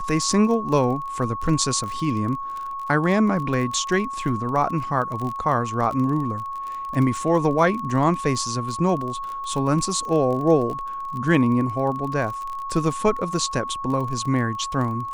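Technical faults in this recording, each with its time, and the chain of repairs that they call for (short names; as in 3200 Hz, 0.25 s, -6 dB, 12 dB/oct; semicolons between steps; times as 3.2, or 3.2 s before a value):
crackle 28/s -28 dBFS
tone 1100 Hz -28 dBFS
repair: de-click; notch 1100 Hz, Q 30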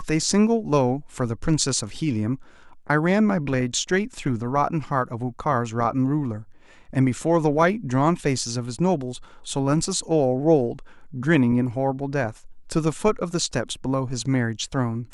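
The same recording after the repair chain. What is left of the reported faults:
none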